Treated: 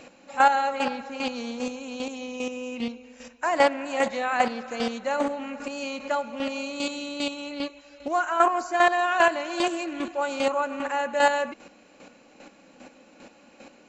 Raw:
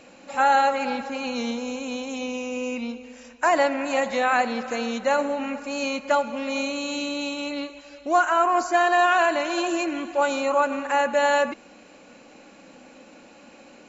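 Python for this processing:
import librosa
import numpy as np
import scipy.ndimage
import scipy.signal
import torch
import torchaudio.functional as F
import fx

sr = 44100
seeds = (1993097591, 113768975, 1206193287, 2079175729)

y = fx.chopper(x, sr, hz=2.5, depth_pct=60, duty_pct=20)
y = fx.doppler_dist(y, sr, depth_ms=0.14)
y = y * 10.0 ** (2.5 / 20.0)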